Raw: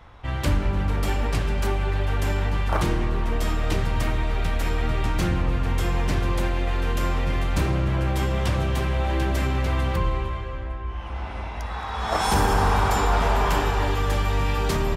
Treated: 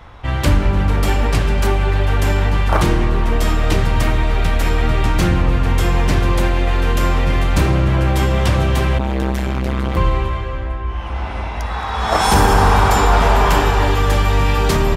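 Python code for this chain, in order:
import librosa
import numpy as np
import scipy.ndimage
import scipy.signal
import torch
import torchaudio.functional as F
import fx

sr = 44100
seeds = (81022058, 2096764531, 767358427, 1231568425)

y = fx.transformer_sat(x, sr, knee_hz=320.0, at=(8.98, 9.97))
y = y * 10.0 ** (8.0 / 20.0)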